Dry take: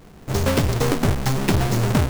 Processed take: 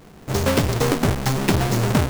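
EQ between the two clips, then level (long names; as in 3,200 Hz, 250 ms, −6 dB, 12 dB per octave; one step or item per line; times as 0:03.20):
low-shelf EQ 72 Hz −7.5 dB
+1.5 dB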